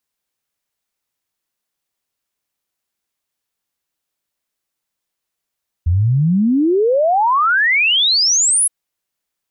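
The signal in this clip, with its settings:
exponential sine sweep 80 Hz → 11,000 Hz 2.82 s −11 dBFS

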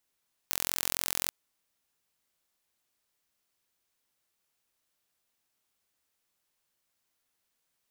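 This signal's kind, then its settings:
impulse train 43.6 per second, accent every 0, −2.5 dBFS 0.80 s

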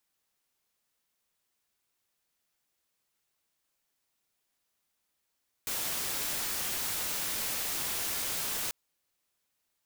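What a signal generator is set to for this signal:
noise white, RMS −33.5 dBFS 3.04 s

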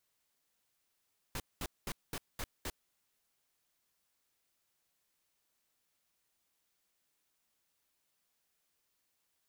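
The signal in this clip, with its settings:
noise bursts pink, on 0.05 s, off 0.21 s, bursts 6, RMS −39 dBFS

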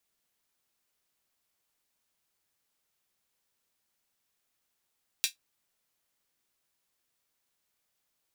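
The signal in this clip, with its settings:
closed synth hi-hat, high-pass 3,000 Hz, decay 0.13 s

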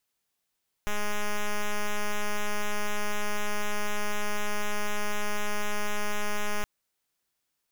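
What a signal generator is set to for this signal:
pulse wave 208 Hz, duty 5% −26.5 dBFS 5.77 s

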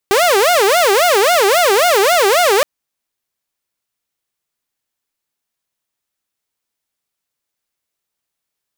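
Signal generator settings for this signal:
siren wail 386–720 Hz 3.7 per second saw −7 dBFS 2.52 s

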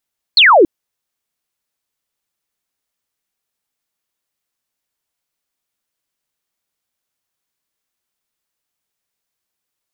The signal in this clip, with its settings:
single falling chirp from 4,500 Hz, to 300 Hz, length 0.28 s sine, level −4.5 dB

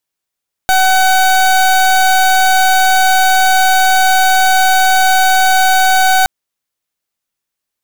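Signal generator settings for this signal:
pulse wave 754 Hz, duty 28% −9.5 dBFS 5.57 s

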